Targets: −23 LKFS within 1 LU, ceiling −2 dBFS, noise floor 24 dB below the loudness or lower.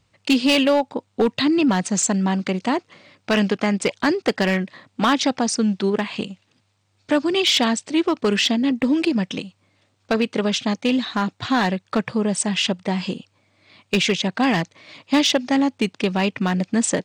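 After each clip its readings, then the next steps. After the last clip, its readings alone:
share of clipped samples 0.5%; peaks flattened at −11.0 dBFS; integrated loudness −21.0 LKFS; sample peak −11.0 dBFS; target loudness −23.0 LKFS
→ clipped peaks rebuilt −11 dBFS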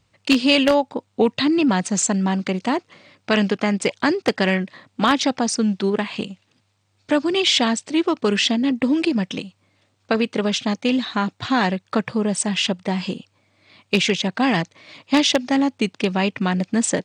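share of clipped samples 0.0%; integrated loudness −20.5 LKFS; sample peak −2.0 dBFS; target loudness −23.0 LKFS
→ level −2.5 dB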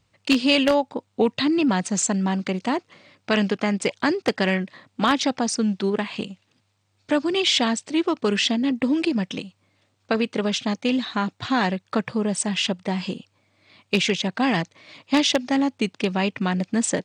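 integrated loudness −23.0 LKFS; sample peak −4.5 dBFS; background noise floor −69 dBFS

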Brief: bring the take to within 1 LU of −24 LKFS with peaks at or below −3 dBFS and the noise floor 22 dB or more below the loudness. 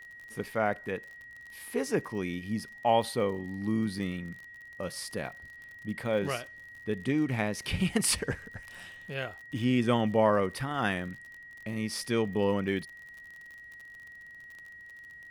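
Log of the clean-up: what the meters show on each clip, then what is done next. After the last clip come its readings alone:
crackle rate 45 per second; interfering tone 1,900 Hz; level of the tone −46 dBFS; integrated loudness −31.0 LKFS; sample peak −11.5 dBFS; target loudness −24.0 LKFS
→ click removal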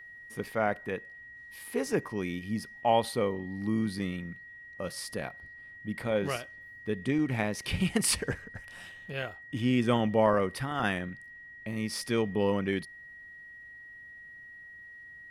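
crackle rate 0.20 per second; interfering tone 1,900 Hz; level of the tone −46 dBFS
→ notch filter 1,900 Hz, Q 30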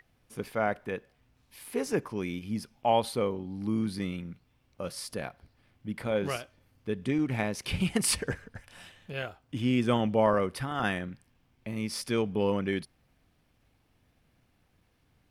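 interfering tone none found; integrated loudness −31.0 LKFS; sample peak −11.5 dBFS; target loudness −24.0 LKFS
→ level +7 dB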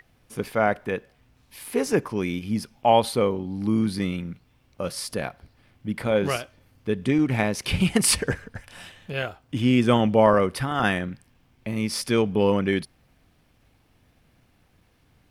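integrated loudness −24.0 LKFS; sample peak −4.5 dBFS; background noise floor −63 dBFS

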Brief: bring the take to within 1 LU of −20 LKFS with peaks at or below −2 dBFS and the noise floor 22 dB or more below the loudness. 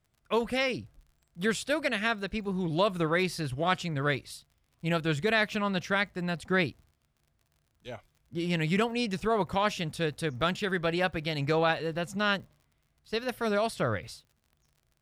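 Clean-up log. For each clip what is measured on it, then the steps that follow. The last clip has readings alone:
crackle rate 52 per second; integrated loudness −29.5 LKFS; sample peak −12.0 dBFS; target loudness −20.0 LKFS
→ click removal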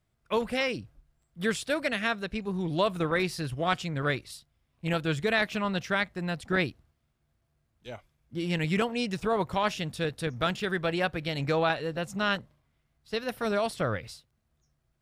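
crackle rate 0.27 per second; integrated loudness −29.5 LKFS; sample peak −12.0 dBFS; target loudness −20.0 LKFS
→ level +9.5 dB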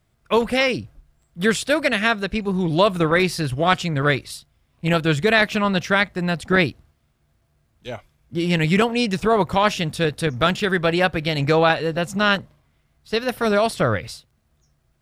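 integrated loudness −20.0 LKFS; sample peak −2.5 dBFS; background noise floor −66 dBFS

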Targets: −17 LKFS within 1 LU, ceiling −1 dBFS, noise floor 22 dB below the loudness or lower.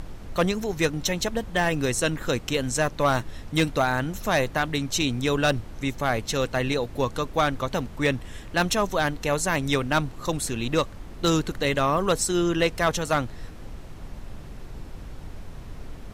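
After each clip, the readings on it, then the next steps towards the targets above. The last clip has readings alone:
share of clipped samples 0.2%; peaks flattened at −13.5 dBFS; background noise floor −41 dBFS; target noise floor −47 dBFS; integrated loudness −25.0 LKFS; sample peak −13.5 dBFS; target loudness −17.0 LKFS
→ clipped peaks rebuilt −13.5 dBFS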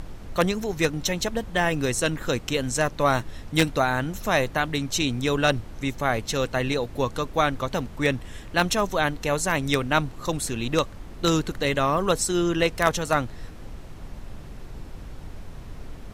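share of clipped samples 0.0%; background noise floor −41 dBFS; target noise floor −47 dBFS
→ noise reduction from a noise print 6 dB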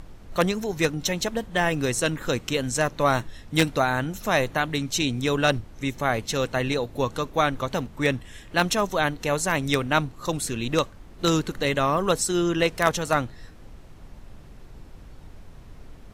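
background noise floor −46 dBFS; target noise floor −47 dBFS
→ noise reduction from a noise print 6 dB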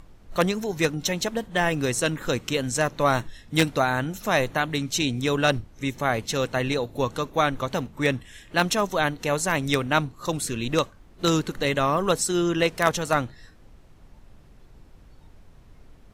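background noise floor −52 dBFS; integrated loudness −25.0 LKFS; sample peak −4.5 dBFS; target loudness −17.0 LKFS
→ level +8 dB
brickwall limiter −1 dBFS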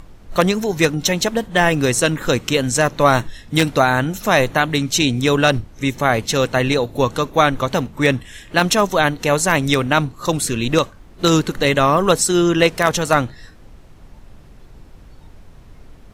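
integrated loudness −17.5 LKFS; sample peak −1.0 dBFS; background noise floor −44 dBFS

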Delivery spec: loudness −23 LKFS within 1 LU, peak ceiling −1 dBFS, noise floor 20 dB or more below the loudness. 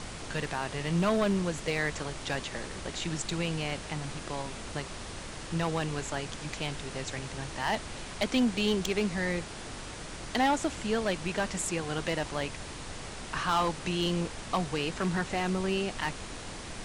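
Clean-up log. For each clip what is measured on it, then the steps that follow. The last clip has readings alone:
share of clipped samples 0.5%; peaks flattened at −20.5 dBFS; background noise floor −42 dBFS; target noise floor −52 dBFS; integrated loudness −32.0 LKFS; sample peak −20.5 dBFS; target loudness −23.0 LKFS
→ clipped peaks rebuilt −20.5 dBFS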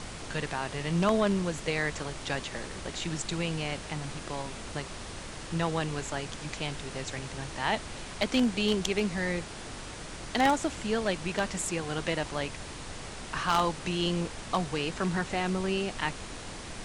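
share of clipped samples 0.0%; background noise floor −42 dBFS; target noise floor −52 dBFS
→ noise reduction from a noise print 10 dB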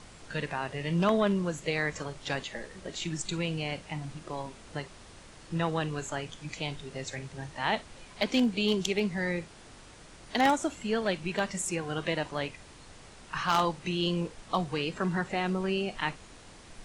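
background noise floor −51 dBFS; target noise floor −52 dBFS
→ noise reduction from a noise print 6 dB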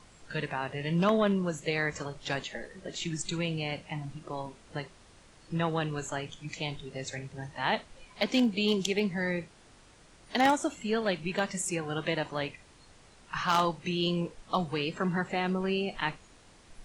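background noise floor −57 dBFS; integrated loudness −31.5 LKFS; sample peak −11.5 dBFS; target loudness −23.0 LKFS
→ level +8.5 dB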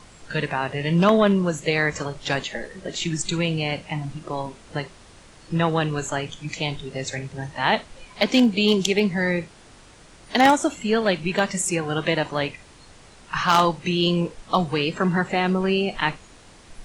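integrated loudness −23.0 LKFS; sample peak −3.0 dBFS; background noise floor −49 dBFS

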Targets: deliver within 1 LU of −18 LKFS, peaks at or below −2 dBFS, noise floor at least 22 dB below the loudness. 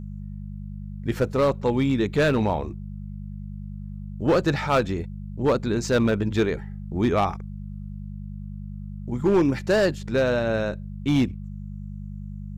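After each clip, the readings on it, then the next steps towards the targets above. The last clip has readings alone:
share of clipped samples 1.1%; peaks flattened at −14.0 dBFS; mains hum 50 Hz; hum harmonics up to 200 Hz; level of the hum −32 dBFS; integrated loudness −24.0 LKFS; sample peak −14.0 dBFS; target loudness −18.0 LKFS
→ clipped peaks rebuilt −14 dBFS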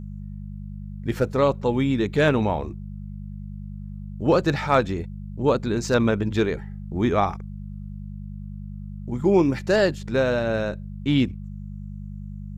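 share of clipped samples 0.0%; mains hum 50 Hz; hum harmonics up to 200 Hz; level of the hum −32 dBFS
→ hum removal 50 Hz, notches 4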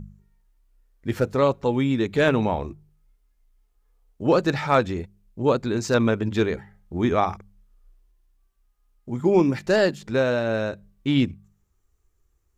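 mains hum none found; integrated loudness −23.0 LKFS; sample peak −5.5 dBFS; target loudness −18.0 LKFS
→ level +5 dB
brickwall limiter −2 dBFS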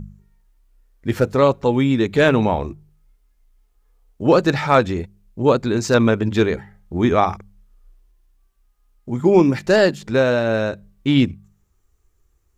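integrated loudness −18.0 LKFS; sample peak −2.0 dBFS; background noise floor −62 dBFS

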